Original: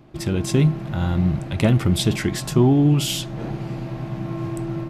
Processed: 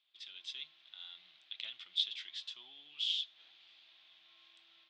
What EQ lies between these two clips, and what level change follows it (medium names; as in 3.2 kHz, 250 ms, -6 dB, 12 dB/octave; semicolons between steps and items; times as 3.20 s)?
ladder band-pass 3.7 kHz, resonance 75%; distance through air 160 m; -1.0 dB